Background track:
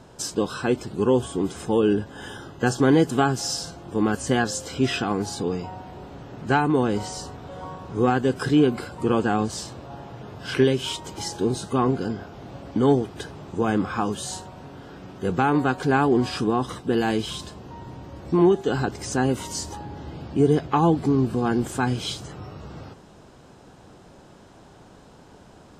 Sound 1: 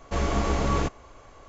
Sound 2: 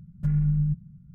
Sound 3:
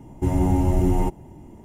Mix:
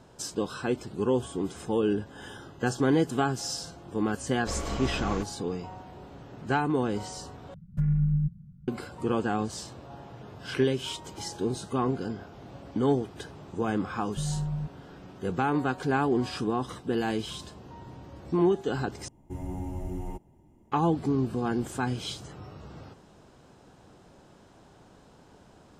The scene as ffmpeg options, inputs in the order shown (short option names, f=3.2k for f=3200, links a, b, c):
-filter_complex "[2:a]asplit=2[a][b];[0:a]volume=-6dB,asplit=3[c][d][e];[c]atrim=end=7.544[f];[a]atrim=end=1.14,asetpts=PTS-STARTPTS,volume=-1.5dB[g];[d]atrim=start=8.676:end=19.084[h];[3:a]atrim=end=1.64,asetpts=PTS-STARTPTS,volume=-15.5dB[i];[e]atrim=start=20.716[j];[1:a]atrim=end=1.48,asetpts=PTS-STARTPTS,volume=-8dB,afade=t=in:d=0.004:c=hsin,afade=t=out:st=1.476:d=0.004:c=hsin,adelay=4350[k];[b]atrim=end=1.14,asetpts=PTS-STARTPTS,volume=-8dB,afade=t=in:d=0.004:c=hsin,afade=t=out:st=1.136:d=0.004:c=hsin,adelay=13930[l];[f][g]acrossfade=d=0.004:c1=hsin:c2=hsin[m];[m][h]acrossfade=d=0.004:c1=hsin:c2=hsin[n];[n][i]acrossfade=d=0.004:c1=hsin:c2=hsin[o];[o][j]acrossfade=d=0.004:c1=hsin:c2=hsin[p];[p][k][l]amix=inputs=3:normalize=0"